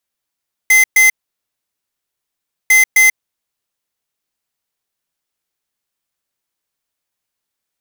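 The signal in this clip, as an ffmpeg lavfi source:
-f lavfi -i "aevalsrc='0.376*(2*lt(mod(2060*t,1),0.5)-1)*clip(min(mod(mod(t,2),0.26),0.14-mod(mod(t,2),0.26))/0.005,0,1)*lt(mod(t,2),0.52)':d=4:s=44100"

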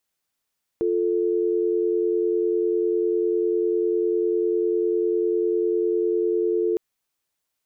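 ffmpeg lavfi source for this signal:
-f lavfi -i "aevalsrc='0.0794*(sin(2*PI*350*t)+sin(2*PI*440*t))':d=5.96:s=44100"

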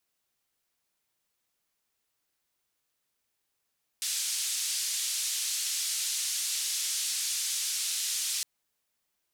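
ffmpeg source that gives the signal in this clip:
-f lavfi -i "anoisesrc=c=white:d=4.41:r=44100:seed=1,highpass=f=3800,lowpass=f=8700,volume=-20.2dB"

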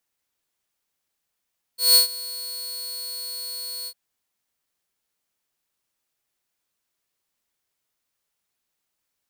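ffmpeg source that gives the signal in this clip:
-f lavfi -i "aevalsrc='0.398*(2*mod(4360*t,1)-1)':d=2.153:s=44100,afade=t=in:d=0.174,afade=t=out:st=0.174:d=0.118:silence=0.1,afade=t=out:st=2.09:d=0.063"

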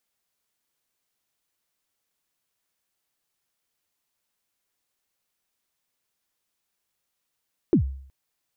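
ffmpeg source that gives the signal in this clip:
-f lavfi -i "aevalsrc='0.251*pow(10,-3*t/0.59)*sin(2*PI*(400*0.099/log(67/400)*(exp(log(67/400)*min(t,0.099)/0.099)-1)+67*max(t-0.099,0)))':d=0.37:s=44100"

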